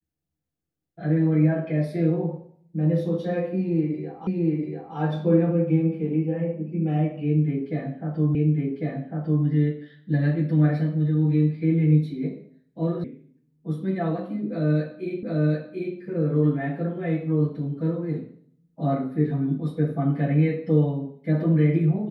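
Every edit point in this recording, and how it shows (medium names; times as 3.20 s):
4.27 s: repeat of the last 0.69 s
8.35 s: repeat of the last 1.1 s
13.04 s: sound stops dead
15.23 s: repeat of the last 0.74 s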